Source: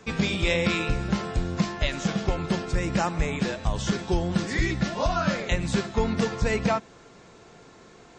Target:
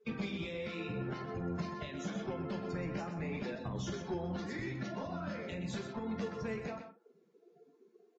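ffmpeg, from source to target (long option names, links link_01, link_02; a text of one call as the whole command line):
ffmpeg -i in.wav -filter_complex "[0:a]highpass=170,afftdn=noise_reduction=36:noise_floor=-37,acrossover=split=500|1900[link_01][link_02][link_03];[link_01]acompressor=threshold=-36dB:ratio=10[link_04];[link_04][link_02][link_03]amix=inputs=3:normalize=0,alimiter=limit=-21.5dB:level=0:latency=1:release=330,acrossover=split=360[link_05][link_06];[link_06]acompressor=threshold=-47dB:ratio=8[link_07];[link_05][link_07]amix=inputs=2:normalize=0,asoftclip=type=tanh:threshold=-34dB,flanger=delay=7.7:depth=5.9:regen=-19:speed=0.84:shape=sinusoidal,asplit=2[link_08][link_09];[link_09]adelay=45,volume=-11dB[link_10];[link_08][link_10]amix=inputs=2:normalize=0,aecho=1:1:125:0.355,volume=6dB" -ar 16000 -c:a libvorbis -b:a 32k out.ogg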